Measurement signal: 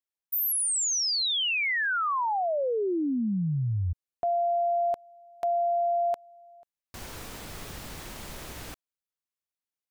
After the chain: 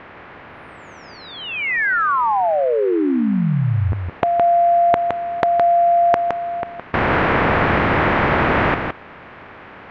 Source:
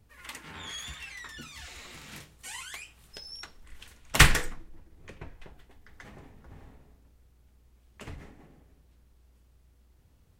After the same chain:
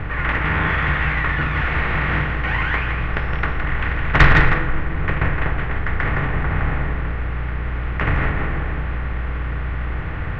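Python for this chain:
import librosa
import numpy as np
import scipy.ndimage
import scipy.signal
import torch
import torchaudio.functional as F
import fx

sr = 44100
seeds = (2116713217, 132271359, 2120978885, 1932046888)

p1 = fx.bin_compress(x, sr, power=0.4)
p2 = scipy.signal.sosfilt(scipy.signal.butter(4, 2100.0, 'lowpass', fs=sr, output='sos'), p1)
p3 = 10.0 ** (-10.0 / 20.0) * np.tanh(p2 / 10.0 ** (-10.0 / 20.0))
p4 = p3 + fx.echo_single(p3, sr, ms=165, db=-6.0, dry=0)
y = F.gain(torch.from_numpy(p4), 7.5).numpy()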